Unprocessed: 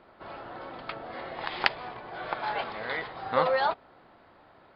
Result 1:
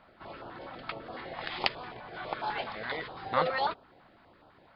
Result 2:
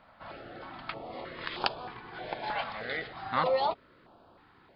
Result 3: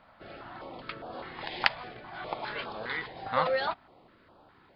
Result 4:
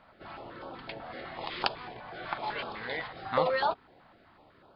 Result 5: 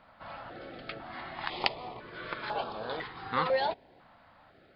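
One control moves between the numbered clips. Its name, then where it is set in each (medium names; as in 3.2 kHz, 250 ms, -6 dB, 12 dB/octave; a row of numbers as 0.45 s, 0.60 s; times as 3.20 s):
step-sequenced notch, rate: 12 Hz, 3.2 Hz, 4.9 Hz, 8 Hz, 2 Hz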